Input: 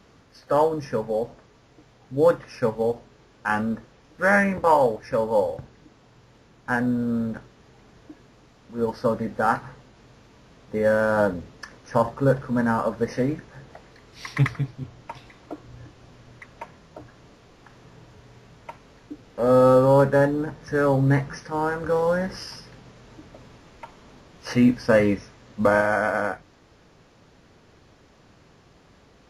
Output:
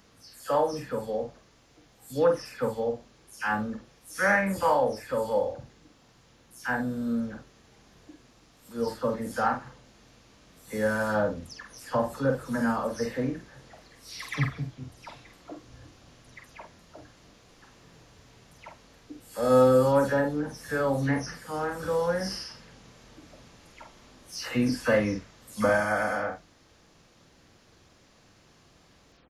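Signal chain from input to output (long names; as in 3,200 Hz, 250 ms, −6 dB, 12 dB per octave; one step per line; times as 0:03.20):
every frequency bin delayed by itself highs early, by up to 176 ms
high-shelf EQ 3,300 Hz +10 dB
double-tracking delay 47 ms −6 dB
level −6 dB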